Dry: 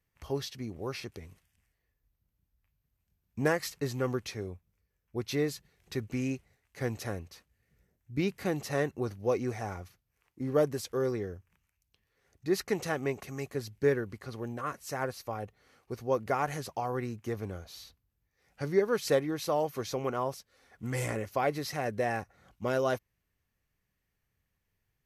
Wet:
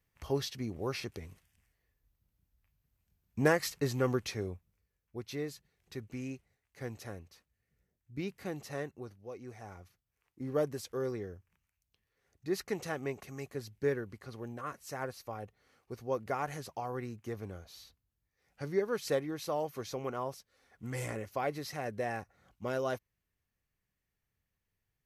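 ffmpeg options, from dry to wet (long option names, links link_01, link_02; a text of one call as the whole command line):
ffmpeg -i in.wav -af "volume=13dB,afade=type=out:start_time=4.47:duration=0.76:silence=0.354813,afade=type=out:start_time=8.71:duration=0.59:silence=0.354813,afade=type=in:start_time=9.3:duration=1.11:silence=0.251189" out.wav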